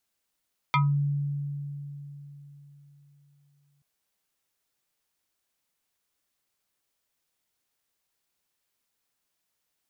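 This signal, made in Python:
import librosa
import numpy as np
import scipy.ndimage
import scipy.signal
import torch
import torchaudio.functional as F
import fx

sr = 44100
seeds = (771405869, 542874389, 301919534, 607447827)

y = fx.fm2(sr, length_s=3.08, level_db=-18.5, carrier_hz=143.0, ratio=7.84, index=2.6, index_s=0.23, decay_s=3.86, shape='exponential')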